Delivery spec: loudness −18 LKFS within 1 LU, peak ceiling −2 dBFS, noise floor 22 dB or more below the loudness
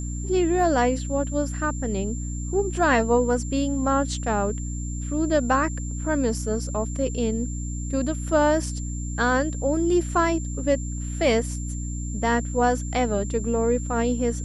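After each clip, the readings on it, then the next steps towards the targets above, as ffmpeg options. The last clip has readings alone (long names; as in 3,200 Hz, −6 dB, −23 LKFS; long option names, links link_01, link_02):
mains hum 60 Hz; hum harmonics up to 300 Hz; level of the hum −27 dBFS; interfering tone 7,300 Hz; level of the tone −38 dBFS; integrated loudness −24.5 LKFS; sample peak −7.5 dBFS; target loudness −18.0 LKFS
→ -af "bandreject=frequency=60:width_type=h:width=6,bandreject=frequency=120:width_type=h:width=6,bandreject=frequency=180:width_type=h:width=6,bandreject=frequency=240:width_type=h:width=6,bandreject=frequency=300:width_type=h:width=6"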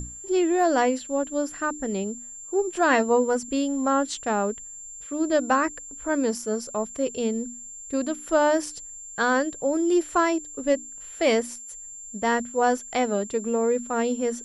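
mains hum none found; interfering tone 7,300 Hz; level of the tone −38 dBFS
→ -af "bandreject=frequency=7300:width=30"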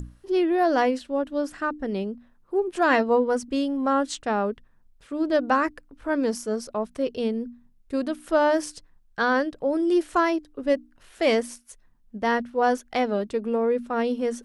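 interfering tone none found; integrated loudness −25.0 LKFS; sample peak −9.5 dBFS; target loudness −18.0 LKFS
→ -af "volume=7dB"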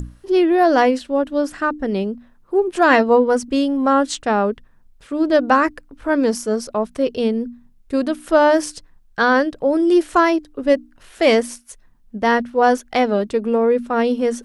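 integrated loudness −18.0 LKFS; sample peak −2.5 dBFS; background noise floor −52 dBFS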